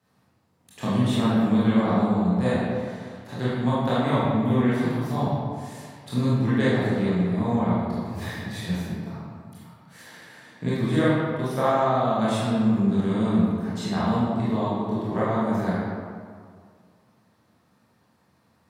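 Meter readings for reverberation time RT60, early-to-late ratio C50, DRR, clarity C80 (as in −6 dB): 2.0 s, −4.0 dB, −10.5 dB, −1.0 dB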